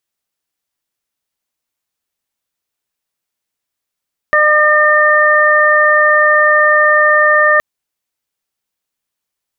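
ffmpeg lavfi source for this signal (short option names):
-f lavfi -i "aevalsrc='0.224*sin(2*PI*604*t)+0.237*sin(2*PI*1208*t)+0.335*sin(2*PI*1812*t)':d=3.27:s=44100"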